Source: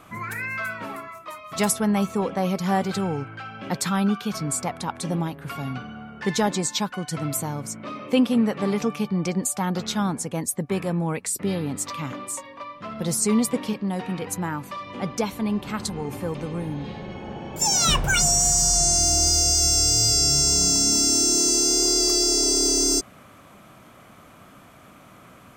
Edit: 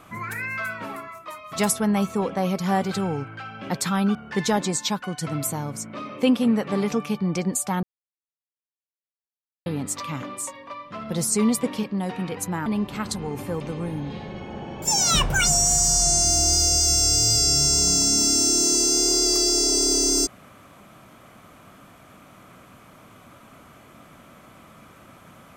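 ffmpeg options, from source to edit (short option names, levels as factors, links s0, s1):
-filter_complex "[0:a]asplit=5[s0][s1][s2][s3][s4];[s0]atrim=end=4.152[s5];[s1]atrim=start=6.048:end=9.73,asetpts=PTS-STARTPTS,afade=t=out:st=3.678:d=0.004:c=hsin[s6];[s2]atrim=start=9.73:end=11.56,asetpts=PTS-STARTPTS,volume=0[s7];[s3]atrim=start=11.56:end=14.562,asetpts=PTS-STARTPTS,afade=t=in:d=0.004:c=hsin[s8];[s4]atrim=start=15.398[s9];[s6][s7][s8]concat=n=3:v=0:a=1[s10];[s5][s10]acrossfade=d=0.004:c1=hsin:c2=hsin[s11];[s11][s9]acrossfade=d=0.004:c1=hsin:c2=hsin"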